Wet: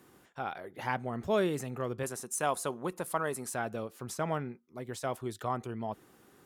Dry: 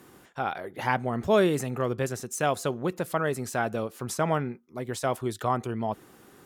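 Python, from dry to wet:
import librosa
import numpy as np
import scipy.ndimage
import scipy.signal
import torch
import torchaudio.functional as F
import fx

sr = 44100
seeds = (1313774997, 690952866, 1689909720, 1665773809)

y = fx.graphic_eq_15(x, sr, hz=(100, 1000, 10000), db=(-10, 7, 11), at=(2.03, 3.55))
y = fx.cheby_harmonics(y, sr, harmonics=(8,), levels_db=(-45,), full_scale_db=-8.5)
y = y * librosa.db_to_amplitude(-7.0)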